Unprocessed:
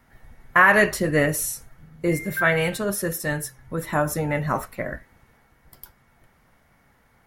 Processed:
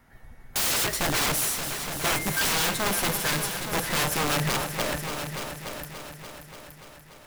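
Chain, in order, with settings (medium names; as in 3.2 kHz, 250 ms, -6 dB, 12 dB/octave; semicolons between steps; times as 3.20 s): integer overflow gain 20 dB; multi-head delay 290 ms, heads all three, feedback 52%, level -12 dB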